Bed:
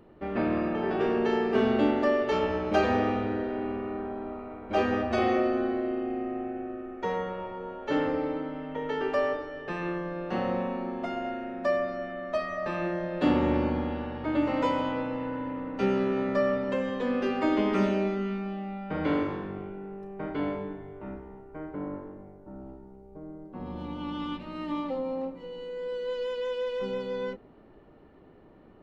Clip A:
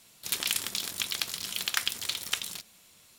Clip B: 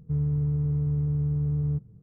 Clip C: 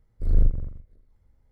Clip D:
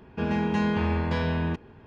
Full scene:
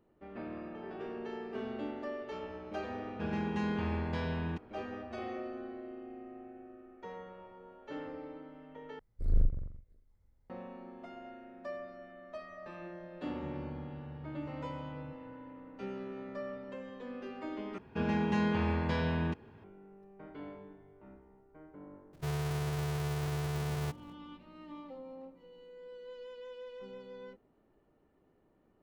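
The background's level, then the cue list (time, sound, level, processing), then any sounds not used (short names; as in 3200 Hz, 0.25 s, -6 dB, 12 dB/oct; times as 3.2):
bed -15.5 dB
3.02 add D -9 dB
8.99 replace with C -8 dB
13.34 add B -15 dB + compressor, threshold -29 dBFS
17.78 replace with D -5 dB + HPF 67 Hz
22.13 add B -12 dB + half-waves squared off
not used: A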